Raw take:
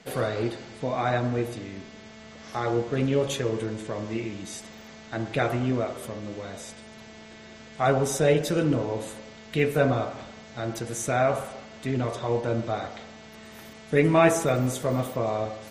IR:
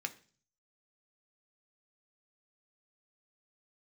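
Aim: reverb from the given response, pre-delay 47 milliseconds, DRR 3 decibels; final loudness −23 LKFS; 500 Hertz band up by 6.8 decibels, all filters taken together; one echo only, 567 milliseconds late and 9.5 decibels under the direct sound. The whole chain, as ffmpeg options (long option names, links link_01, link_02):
-filter_complex "[0:a]equalizer=frequency=500:width_type=o:gain=8.5,aecho=1:1:567:0.335,asplit=2[link_01][link_02];[1:a]atrim=start_sample=2205,adelay=47[link_03];[link_02][link_03]afir=irnorm=-1:irlink=0,volume=-4dB[link_04];[link_01][link_04]amix=inputs=2:normalize=0,volume=-2dB"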